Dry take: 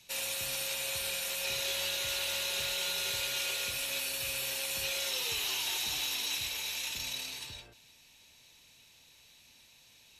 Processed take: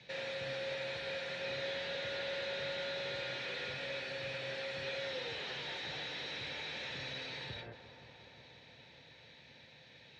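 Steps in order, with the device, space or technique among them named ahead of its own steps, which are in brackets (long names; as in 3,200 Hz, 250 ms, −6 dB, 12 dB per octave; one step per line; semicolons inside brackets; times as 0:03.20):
analogue delay pedal into a guitar amplifier (bucket-brigade delay 177 ms, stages 2,048, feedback 84%, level −16 dB; tube saturation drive 43 dB, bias 0.4; loudspeaker in its box 100–3,600 Hz, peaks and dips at 140 Hz +8 dB, 510 Hz +8 dB, 1,100 Hz −8 dB, 1,800 Hz +6 dB, 2,800 Hz −9 dB)
level +8 dB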